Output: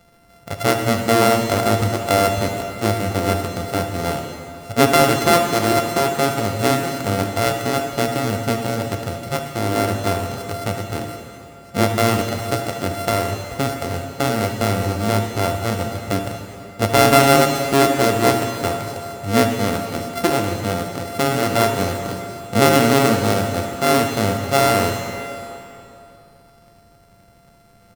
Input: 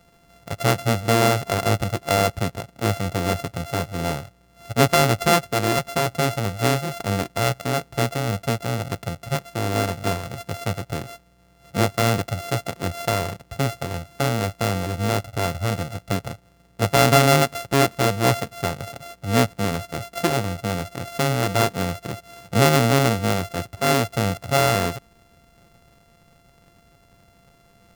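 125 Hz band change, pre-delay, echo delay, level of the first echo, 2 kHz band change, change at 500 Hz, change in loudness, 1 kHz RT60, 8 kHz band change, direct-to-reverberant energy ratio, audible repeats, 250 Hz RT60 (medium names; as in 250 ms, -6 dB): 0.0 dB, 6 ms, 76 ms, -14.5 dB, +2.5 dB, +4.5 dB, +3.5 dB, 2.9 s, +3.0 dB, 3.5 dB, 1, 2.8 s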